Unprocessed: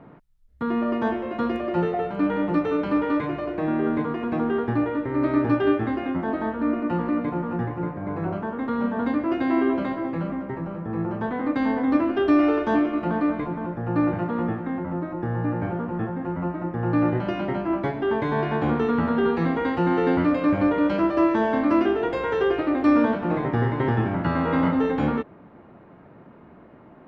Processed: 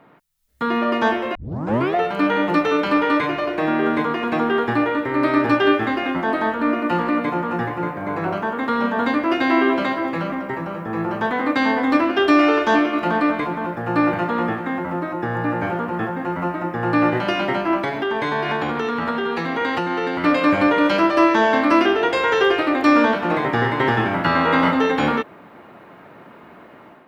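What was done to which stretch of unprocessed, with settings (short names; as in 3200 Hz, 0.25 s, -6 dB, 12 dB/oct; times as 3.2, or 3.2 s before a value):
1.35 tape start 0.61 s
17.8–20.24 compressor, threshold -24 dBFS
whole clip: tilt +3.5 dB/oct; AGC gain up to 9 dB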